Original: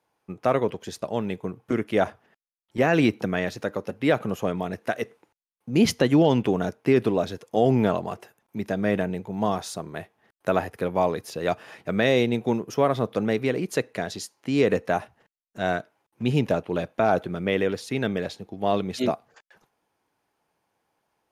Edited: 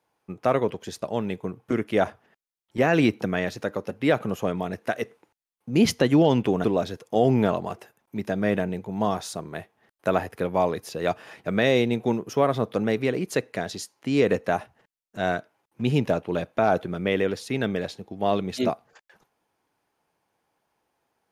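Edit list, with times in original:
0:06.64–0:07.05: remove

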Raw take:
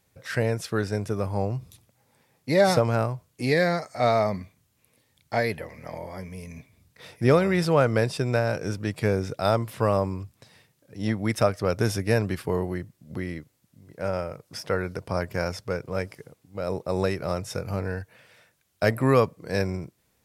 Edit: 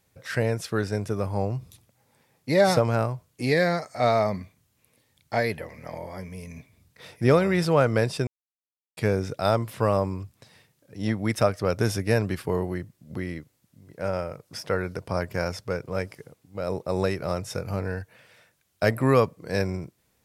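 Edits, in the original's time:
0:08.27–0:08.97: silence

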